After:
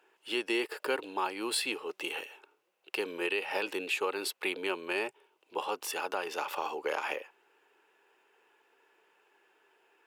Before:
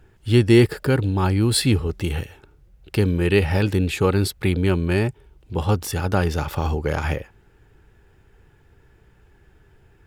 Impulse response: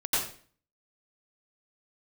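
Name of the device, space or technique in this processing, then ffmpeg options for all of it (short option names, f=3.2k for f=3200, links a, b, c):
laptop speaker: -af "highpass=f=390:w=0.5412,highpass=f=390:w=1.3066,equalizer=f=1k:t=o:w=0.44:g=7,equalizer=f=2.7k:t=o:w=0.38:g=8.5,alimiter=limit=-13dB:level=0:latency=1:release=204,volume=-7dB"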